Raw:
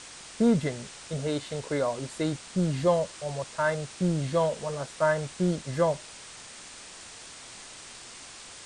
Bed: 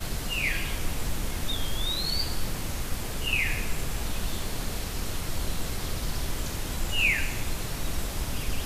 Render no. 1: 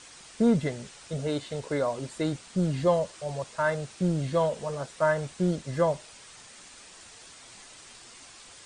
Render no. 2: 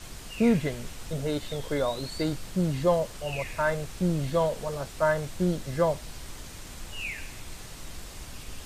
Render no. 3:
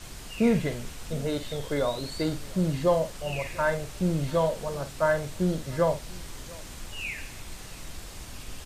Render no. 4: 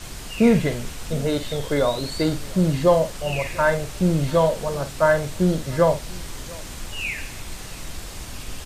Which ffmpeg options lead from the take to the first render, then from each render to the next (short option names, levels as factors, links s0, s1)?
-af "afftdn=nr=6:nf=-46"
-filter_complex "[1:a]volume=0.266[s0];[0:a][s0]amix=inputs=2:normalize=0"
-filter_complex "[0:a]asplit=2[s0][s1];[s1]adelay=49,volume=0.282[s2];[s0][s2]amix=inputs=2:normalize=0,aecho=1:1:693:0.075"
-af "volume=2.11"